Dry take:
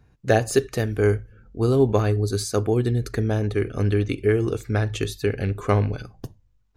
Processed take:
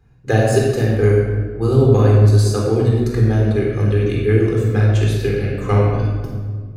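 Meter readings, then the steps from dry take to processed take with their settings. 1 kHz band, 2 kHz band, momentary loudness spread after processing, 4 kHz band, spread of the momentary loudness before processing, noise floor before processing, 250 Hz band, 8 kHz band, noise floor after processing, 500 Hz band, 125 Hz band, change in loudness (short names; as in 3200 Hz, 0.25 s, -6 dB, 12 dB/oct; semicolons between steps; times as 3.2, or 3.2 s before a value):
+3.5 dB, +3.5 dB, 8 LU, +3.0 dB, 8 LU, -61 dBFS, +6.0 dB, +1.5 dB, -32 dBFS, +5.0 dB, +9.5 dB, +7.0 dB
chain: shoebox room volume 1800 m³, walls mixed, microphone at 3.9 m; gain -3 dB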